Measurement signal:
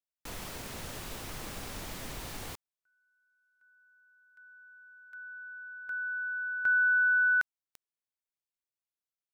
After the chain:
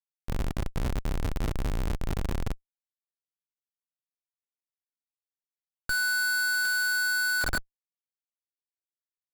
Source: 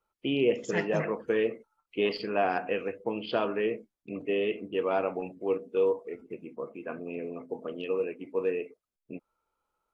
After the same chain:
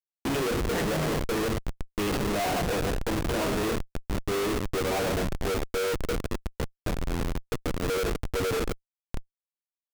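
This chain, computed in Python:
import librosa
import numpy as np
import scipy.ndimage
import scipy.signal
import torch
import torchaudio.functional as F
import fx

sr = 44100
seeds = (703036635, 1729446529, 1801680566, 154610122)

y = fx.hum_notches(x, sr, base_hz=60, count=7)
y = fx.rev_double_slope(y, sr, seeds[0], early_s=0.29, late_s=4.2, knee_db=-18, drr_db=2.0)
y = fx.schmitt(y, sr, flips_db=-31.0)
y = y * 10.0 ** (3.5 / 20.0)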